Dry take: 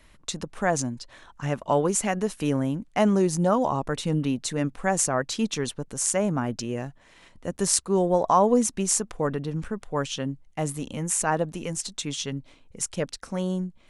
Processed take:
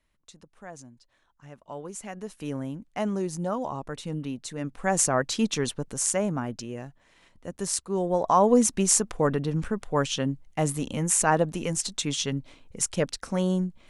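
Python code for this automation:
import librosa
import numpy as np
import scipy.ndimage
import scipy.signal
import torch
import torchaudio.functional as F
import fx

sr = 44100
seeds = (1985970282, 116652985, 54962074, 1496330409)

y = fx.gain(x, sr, db=fx.line((1.52, -19.0), (2.55, -7.5), (4.57, -7.5), (4.99, 1.0), (5.85, 1.0), (6.71, -6.0), (7.88, -6.0), (8.67, 2.5)))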